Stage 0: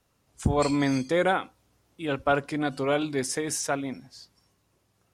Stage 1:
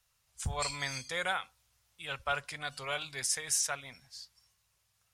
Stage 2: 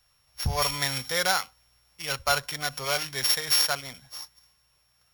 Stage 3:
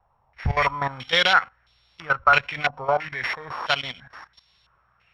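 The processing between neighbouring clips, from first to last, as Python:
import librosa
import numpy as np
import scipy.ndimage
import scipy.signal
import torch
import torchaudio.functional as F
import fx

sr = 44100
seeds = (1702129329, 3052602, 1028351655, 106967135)

y1 = fx.tone_stack(x, sr, knobs='10-0-10')
y1 = y1 * 10.0 ** (1.5 / 20.0)
y2 = np.r_[np.sort(y1[:len(y1) // 8 * 8].reshape(-1, 8), axis=1).ravel(), y1[len(y1) // 8 * 8:]]
y2 = fx.hum_notches(y2, sr, base_hz=50, count=2)
y2 = y2 * 10.0 ** (8.5 / 20.0)
y3 = fx.level_steps(y2, sr, step_db=14)
y3 = fx.filter_held_lowpass(y3, sr, hz=3.0, low_hz=870.0, high_hz=3800.0)
y3 = y3 * 10.0 ** (7.5 / 20.0)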